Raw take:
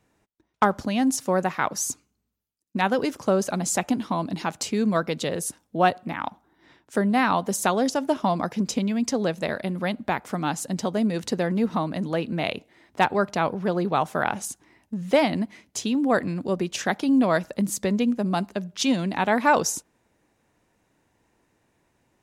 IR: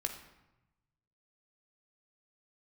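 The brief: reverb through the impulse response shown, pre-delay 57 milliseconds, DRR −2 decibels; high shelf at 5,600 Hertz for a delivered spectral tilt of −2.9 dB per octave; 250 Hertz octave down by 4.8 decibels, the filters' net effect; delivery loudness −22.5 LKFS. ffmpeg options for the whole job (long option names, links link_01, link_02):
-filter_complex "[0:a]equalizer=frequency=250:width_type=o:gain=-6,highshelf=frequency=5600:gain=9,asplit=2[link_01][link_02];[1:a]atrim=start_sample=2205,adelay=57[link_03];[link_02][link_03]afir=irnorm=-1:irlink=0,volume=0.5dB[link_04];[link_01][link_04]amix=inputs=2:normalize=0,volume=-0.5dB"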